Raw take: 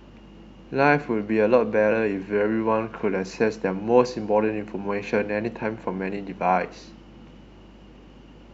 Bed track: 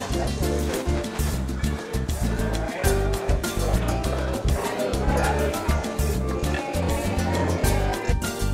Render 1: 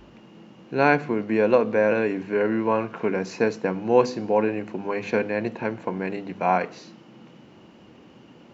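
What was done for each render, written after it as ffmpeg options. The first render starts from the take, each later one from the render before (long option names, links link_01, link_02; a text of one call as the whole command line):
ffmpeg -i in.wav -af "bandreject=frequency=50:width_type=h:width=4,bandreject=frequency=100:width_type=h:width=4,bandreject=frequency=150:width_type=h:width=4,bandreject=frequency=200:width_type=h:width=4,bandreject=frequency=250:width_type=h:width=4" out.wav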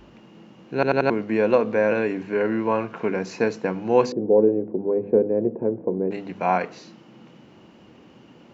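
ffmpeg -i in.wav -filter_complex "[0:a]asettb=1/sr,asplit=3[link_01][link_02][link_03];[link_01]atrim=end=4.124[link_04];[link_02]atrim=start=4.12:end=6.11,asetpts=PTS-STARTPTS,afade=type=in:duration=0.004:curve=qsin,afade=type=out:start_time=1.986:duration=0.004:curve=qsin,lowpass=frequency=440:width_type=q:width=2.5[link_05];[link_03]atrim=start=6.106[link_06];[link_04][link_05]acrossfade=duration=0.004:curve1=hsin:curve2=qsin[link_07];[link_07][link_06]acrossfade=duration=0.004:curve1=qsin:curve2=hsin,asplit=5[link_08][link_09][link_10][link_11][link_12];[link_08]atrim=end=0.832[link_13];[link_09]atrim=start=0.738:end=0.832[link_14];[link_10]atrim=start=0.738:end=0.832[link_15];[link_11]atrim=start=0.738:end=0.832[link_16];[link_12]atrim=start=1.098[link_17];[link_13][link_14]acrossfade=duration=0.004:curve1=hsin:curve2=hsin[link_18];[link_18][link_15]acrossfade=duration=0.004:curve1=hsin:curve2=hsin[link_19];[link_19][link_16]acrossfade=duration=0.004:curve1=hsin:curve2=hsin[link_20];[link_20][link_17]acrossfade=duration=0.004:curve1=hsin:curve2=hsin" out.wav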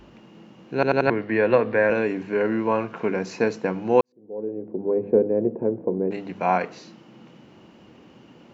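ffmpeg -i in.wav -filter_complex "[0:a]asettb=1/sr,asplit=3[link_01][link_02][link_03];[link_01]atrim=end=1.074[link_04];[link_02]atrim=start=1.07:end=1.9,asetpts=PTS-STARTPTS,afade=type=in:duration=0.004:curve=qsin,afade=type=out:start_time=0.826:duration=0.004:curve=qsin,highpass=110,equalizer=frequency=120:width_type=q:width=4:gain=10,equalizer=frequency=200:width_type=q:width=4:gain=-5,equalizer=frequency=1800:width_type=q:width=4:gain=9,lowpass=frequency=4500:width=0.5412,lowpass=frequency=4500:width=1.3066[link_05];[link_03]atrim=start=1.896[link_06];[link_04][link_05]acrossfade=duration=0.004:curve1=hsin:curve2=qsin[link_07];[link_07][link_06]acrossfade=duration=0.004:curve1=qsin:curve2=hsin,asplit=2[link_08][link_09];[link_08]atrim=end=4.01,asetpts=PTS-STARTPTS,afade=type=out:start_time=4.006:duration=0.004:curve=hsin[link_10];[link_09]atrim=start=4.01,asetpts=PTS-STARTPTS,afade=type=in:duration=0.9:curve=qua[link_11];[link_10][link_11]concat=n=2:v=0:a=1" out.wav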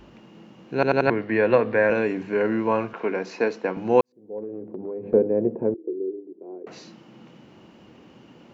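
ffmpeg -i in.wav -filter_complex "[0:a]asettb=1/sr,asplit=3[link_01][link_02][link_03];[link_01]atrim=end=2.934[link_04];[link_02]atrim=start=2.93:end=3.77,asetpts=PTS-STARTPTS,afade=type=in:duration=0.004:curve=qsin,afade=type=out:start_time=0.836:duration=0.004:curve=qsin,acrossover=split=230 5700:gain=0.141 1 0.178[link_05][link_06][link_07];[link_05][link_06][link_07]amix=inputs=3:normalize=0[link_08];[link_03]atrim=start=3.766[link_09];[link_04][link_08]acrossfade=duration=0.004:curve1=hsin:curve2=qsin[link_10];[link_10][link_09]acrossfade=duration=0.004:curve1=qsin:curve2=hsin,asettb=1/sr,asplit=3[link_11][link_12][link_13];[link_11]atrim=end=4.384[link_14];[link_12]atrim=start=4.38:end=5.14,asetpts=PTS-STARTPTS,afade=type=in:duration=0.004:curve=qsin,afade=type=out:start_time=0.756:duration=0.004:curve=qsin,acompressor=threshold=-29dB:ratio=6:attack=3.2:release=140:knee=1:detection=peak[link_15];[link_13]atrim=start=5.136[link_16];[link_14][link_15]acrossfade=duration=0.004:curve1=hsin:curve2=qsin[link_17];[link_17][link_16]acrossfade=duration=0.004:curve1=qsin:curve2=hsin,asettb=1/sr,asplit=3[link_18][link_19][link_20];[link_18]atrim=end=5.744[link_21];[link_19]atrim=start=5.74:end=6.67,asetpts=PTS-STARTPTS,afade=type=in:duration=0.004:curve=qsin,afade=type=out:start_time=0.926:duration=0.004:curve=qsin,asuperpass=centerf=360:order=4:qfactor=3.6[link_22];[link_20]atrim=start=6.666[link_23];[link_21][link_22]acrossfade=duration=0.004:curve1=hsin:curve2=qsin[link_24];[link_24][link_23]acrossfade=duration=0.004:curve1=qsin:curve2=hsin" out.wav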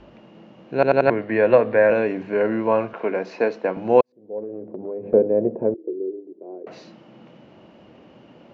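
ffmpeg -i in.wav -af "lowpass=4500,equalizer=frequency=610:width_type=o:width=0.49:gain=8" out.wav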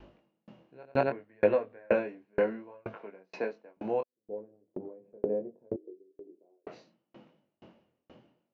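ffmpeg -i in.wav -af "flanger=delay=19.5:depth=4.8:speed=0.68,aeval=exprs='val(0)*pow(10,-40*if(lt(mod(2.1*n/s,1),2*abs(2.1)/1000),1-mod(2.1*n/s,1)/(2*abs(2.1)/1000),(mod(2.1*n/s,1)-2*abs(2.1)/1000)/(1-2*abs(2.1)/1000))/20)':channel_layout=same" out.wav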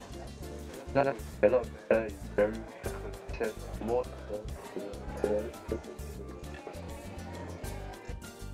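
ffmpeg -i in.wav -i bed.wav -filter_complex "[1:a]volume=-18.5dB[link_01];[0:a][link_01]amix=inputs=2:normalize=0" out.wav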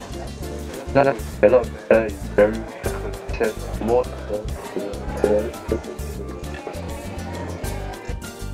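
ffmpeg -i in.wav -af "volume=12dB,alimiter=limit=-2dB:level=0:latency=1" out.wav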